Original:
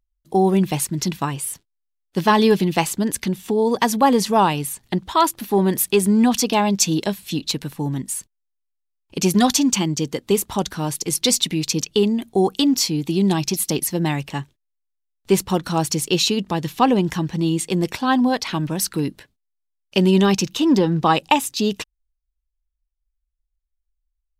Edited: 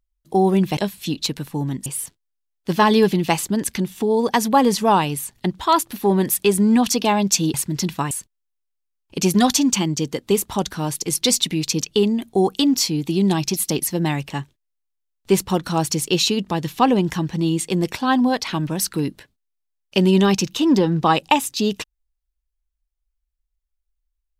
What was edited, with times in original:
0:00.77–0:01.34: swap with 0:07.02–0:08.11

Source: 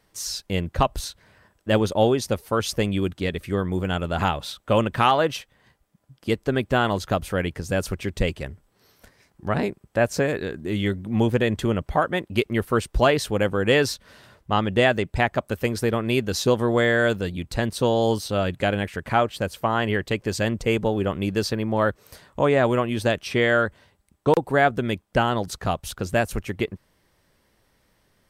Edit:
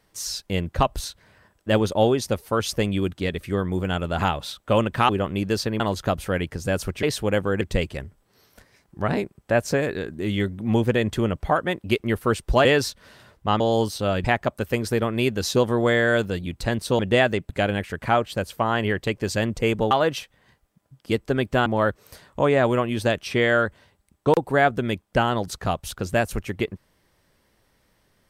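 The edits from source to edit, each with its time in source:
0:05.09–0:06.84: swap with 0:20.95–0:21.66
0:13.11–0:13.69: move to 0:08.07
0:14.64–0:15.15: swap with 0:17.90–0:18.54

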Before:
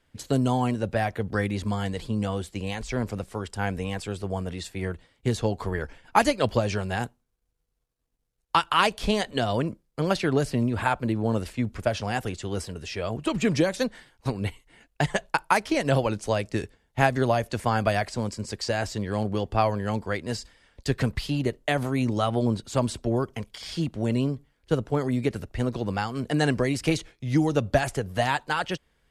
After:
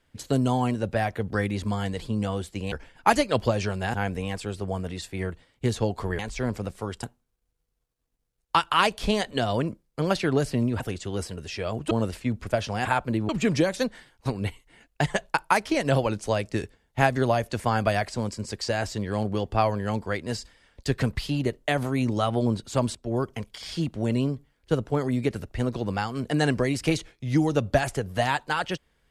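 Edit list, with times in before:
0:02.72–0:03.56: swap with 0:05.81–0:07.03
0:10.80–0:11.24: swap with 0:12.18–0:13.29
0:22.95–0:23.20: fade in, from −21.5 dB

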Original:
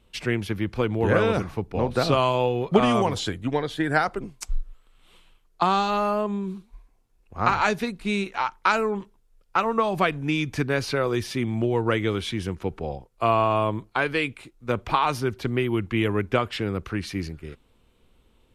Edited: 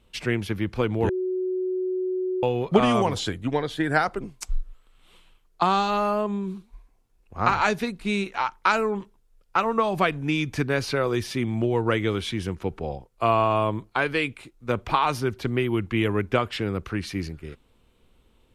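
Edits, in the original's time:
0:01.09–0:02.43: beep over 370 Hz −23.5 dBFS

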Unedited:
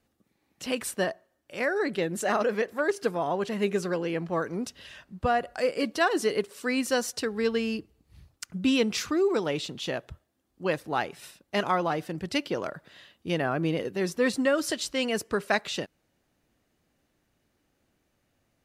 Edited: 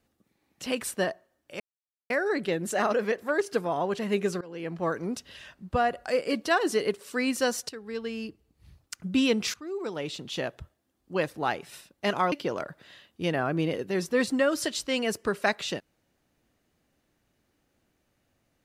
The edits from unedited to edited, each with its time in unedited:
0:01.60: splice in silence 0.50 s
0:03.91–0:04.34: fade in, from −24 dB
0:07.19–0:08.45: fade in, from −13 dB
0:09.04–0:09.89: fade in, from −20 dB
0:11.82–0:12.38: remove

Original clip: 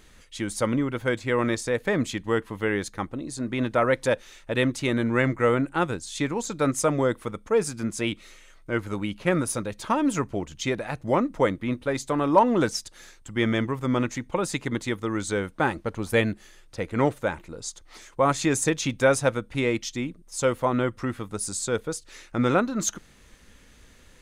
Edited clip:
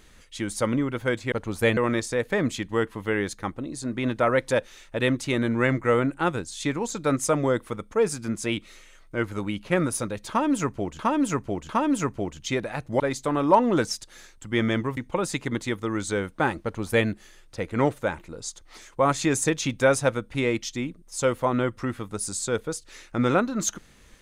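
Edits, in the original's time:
0:09.84–0:10.54: repeat, 3 plays
0:11.15–0:11.84: remove
0:13.81–0:14.17: remove
0:15.83–0:16.28: duplicate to 0:01.32

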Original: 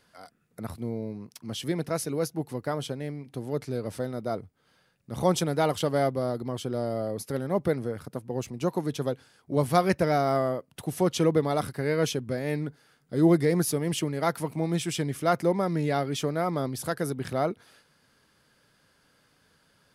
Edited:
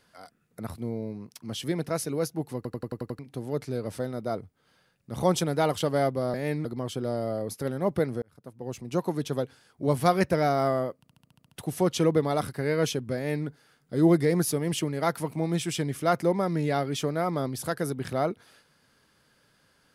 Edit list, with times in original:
0:02.56: stutter in place 0.09 s, 7 plays
0:07.91–0:08.67: fade in
0:10.66: stutter 0.07 s, 8 plays
0:12.36–0:12.67: duplicate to 0:06.34

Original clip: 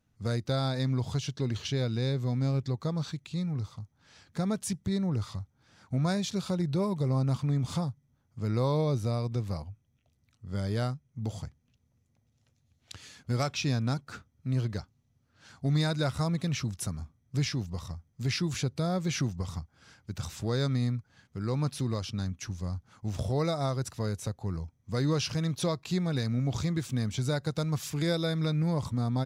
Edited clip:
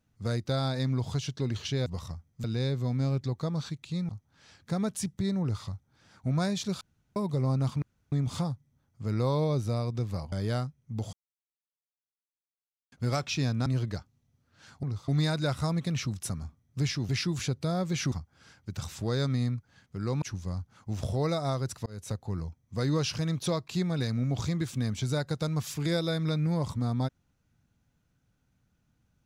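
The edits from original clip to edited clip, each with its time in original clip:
0:03.51–0:03.76: move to 0:15.65
0:06.48–0:06.83: fill with room tone
0:07.49: splice in room tone 0.30 s
0:09.69–0:10.59: remove
0:11.40–0:13.19: silence
0:13.93–0:14.48: remove
0:17.66–0:18.24: move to 0:01.86
0:19.27–0:19.53: remove
0:21.63–0:22.38: remove
0:24.02–0:24.27: fade in

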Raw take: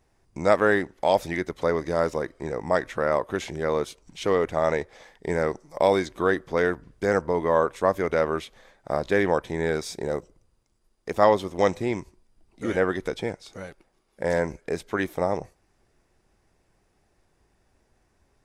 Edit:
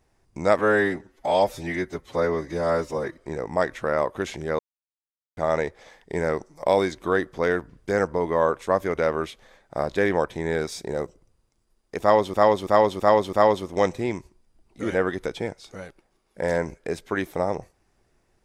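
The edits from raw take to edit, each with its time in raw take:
0:00.59–0:02.31: time-stretch 1.5×
0:03.73–0:04.51: silence
0:11.15–0:11.48: repeat, 5 plays

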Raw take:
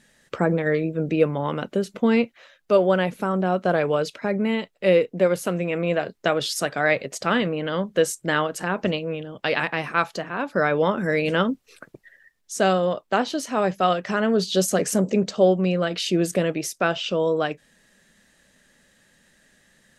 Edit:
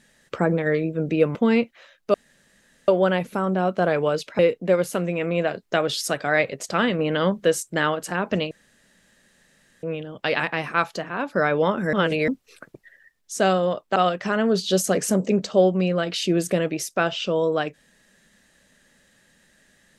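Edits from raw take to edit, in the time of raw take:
0:01.35–0:01.96: remove
0:02.75: splice in room tone 0.74 s
0:04.26–0:04.91: remove
0:07.51–0:07.96: clip gain +4 dB
0:09.03: splice in room tone 1.32 s
0:11.13–0:11.48: reverse
0:13.16–0:13.80: remove

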